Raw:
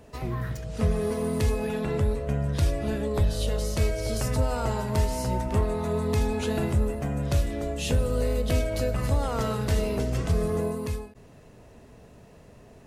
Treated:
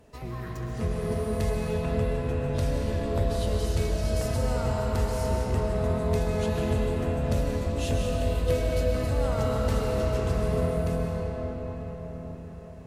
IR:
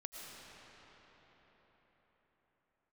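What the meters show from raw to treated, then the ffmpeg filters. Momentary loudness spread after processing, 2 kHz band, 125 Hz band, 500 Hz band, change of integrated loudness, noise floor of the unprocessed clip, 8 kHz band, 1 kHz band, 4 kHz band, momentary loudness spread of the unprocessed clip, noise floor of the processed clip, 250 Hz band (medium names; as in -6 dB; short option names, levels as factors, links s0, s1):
9 LU, -1.0 dB, -0.5 dB, +1.0 dB, -0.5 dB, -51 dBFS, -3.5 dB, -0.5 dB, -2.0 dB, 4 LU, -40 dBFS, -1.0 dB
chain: -filter_complex "[1:a]atrim=start_sample=2205,asetrate=37485,aresample=44100[s0];[0:a][s0]afir=irnorm=-1:irlink=0"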